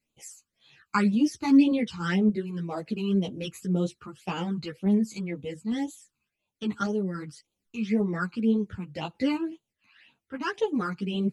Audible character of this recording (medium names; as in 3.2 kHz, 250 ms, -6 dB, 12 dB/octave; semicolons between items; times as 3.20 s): phasing stages 12, 1.9 Hz, lowest notch 560–1800 Hz; random-step tremolo 3.5 Hz; a shimmering, thickened sound